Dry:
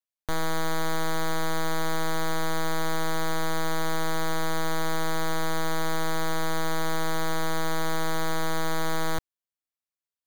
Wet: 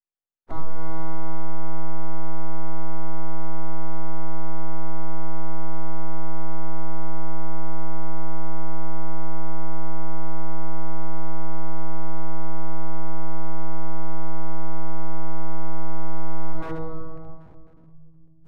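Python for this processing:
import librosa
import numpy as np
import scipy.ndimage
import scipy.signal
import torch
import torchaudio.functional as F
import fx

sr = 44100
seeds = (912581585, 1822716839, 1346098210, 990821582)

y = fx.room_shoebox(x, sr, seeds[0], volume_m3=950.0, walls='mixed', distance_m=3.1)
y = 10.0 ** (-5.5 / 20.0) * np.tanh(y / 10.0 ** (-5.5 / 20.0))
y = scipy.signal.savgol_filter(y, 65, 4, mode='constant')
y = fx.stretch_vocoder_free(y, sr, factor=1.8)
y = np.abs(y)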